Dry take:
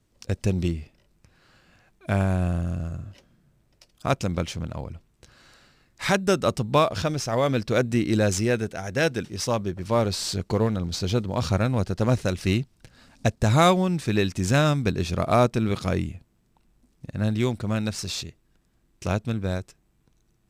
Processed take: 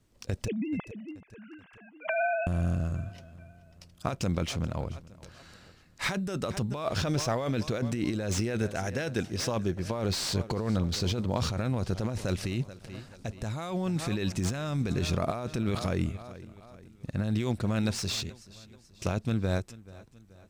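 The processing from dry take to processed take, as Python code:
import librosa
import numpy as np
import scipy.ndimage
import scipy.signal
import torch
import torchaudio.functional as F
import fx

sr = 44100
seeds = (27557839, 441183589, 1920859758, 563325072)

p1 = fx.sine_speech(x, sr, at=(0.48, 2.47))
p2 = p1 + fx.echo_feedback(p1, sr, ms=431, feedback_pct=47, wet_db=-21.5, dry=0)
p3 = fx.over_compress(p2, sr, threshold_db=-26.0, ratio=-1.0)
p4 = fx.slew_limit(p3, sr, full_power_hz=230.0)
y = F.gain(torch.from_numpy(p4), -3.0).numpy()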